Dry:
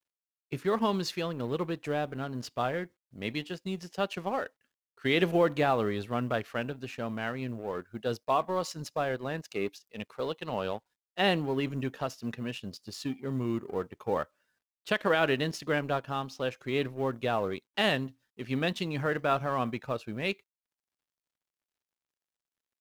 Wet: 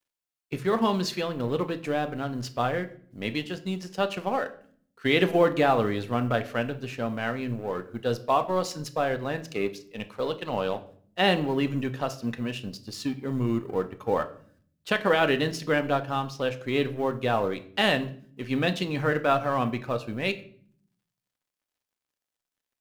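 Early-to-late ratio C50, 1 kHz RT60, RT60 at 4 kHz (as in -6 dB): 15.5 dB, 0.45 s, 0.40 s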